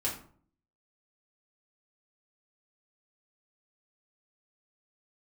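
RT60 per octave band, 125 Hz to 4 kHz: 0.70, 0.65, 0.55, 0.50, 0.35, 0.30 s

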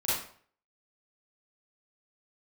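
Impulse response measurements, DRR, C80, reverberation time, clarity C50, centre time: -10.5 dB, 4.5 dB, 0.50 s, -2.0 dB, 65 ms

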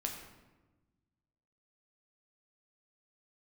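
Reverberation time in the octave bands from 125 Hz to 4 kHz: 1.9, 1.7, 1.3, 1.1, 0.95, 0.75 s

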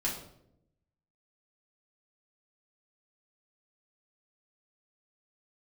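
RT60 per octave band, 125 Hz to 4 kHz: 1.2, 1.1, 0.90, 0.65, 0.55, 0.50 s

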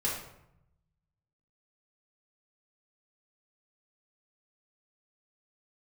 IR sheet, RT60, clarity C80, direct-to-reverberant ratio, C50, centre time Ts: 0.80 s, 7.0 dB, -5.5 dB, 3.0 dB, 44 ms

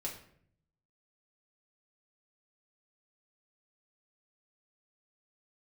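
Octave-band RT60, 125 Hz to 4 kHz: 1.1, 0.85, 0.70, 0.55, 0.55, 0.45 s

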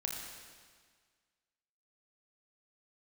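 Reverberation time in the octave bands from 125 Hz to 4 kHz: 1.7, 1.7, 1.6, 1.7, 1.7, 1.6 s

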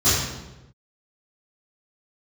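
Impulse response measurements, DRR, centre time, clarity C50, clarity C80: -16.5 dB, 79 ms, -1.0 dB, 2.5 dB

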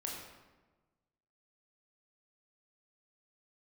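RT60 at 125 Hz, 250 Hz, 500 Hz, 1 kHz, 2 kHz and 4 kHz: 1.6, 1.4, 1.3, 1.2, 1.0, 0.80 s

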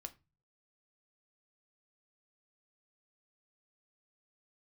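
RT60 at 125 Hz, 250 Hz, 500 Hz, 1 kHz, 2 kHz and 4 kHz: 0.70, 0.45, 0.25, 0.25, 0.25, 0.20 s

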